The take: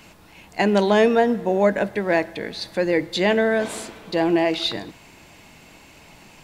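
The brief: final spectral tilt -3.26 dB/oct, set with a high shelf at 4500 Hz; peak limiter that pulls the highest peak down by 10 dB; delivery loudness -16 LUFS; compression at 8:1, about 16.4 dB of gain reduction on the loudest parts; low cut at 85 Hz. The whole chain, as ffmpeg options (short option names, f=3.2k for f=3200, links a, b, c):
-af "highpass=85,highshelf=f=4.5k:g=-6,acompressor=threshold=-30dB:ratio=8,volume=20dB,alimiter=limit=-5.5dB:level=0:latency=1"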